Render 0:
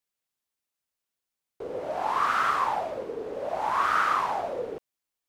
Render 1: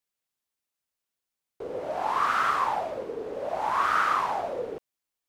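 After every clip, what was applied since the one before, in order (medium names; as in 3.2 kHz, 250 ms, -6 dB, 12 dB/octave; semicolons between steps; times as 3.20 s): no audible change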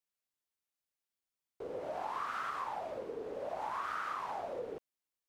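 compression, threshold -29 dBFS, peak gain reduction 9 dB; trim -6.5 dB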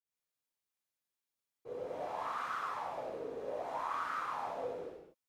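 reverberation, pre-delay 46 ms; trim +11.5 dB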